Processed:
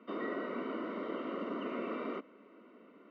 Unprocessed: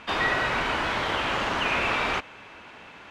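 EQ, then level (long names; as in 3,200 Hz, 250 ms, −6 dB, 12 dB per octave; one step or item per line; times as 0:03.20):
moving average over 53 samples
Butterworth high-pass 210 Hz 48 dB per octave
high-frequency loss of the air 110 metres
0.0 dB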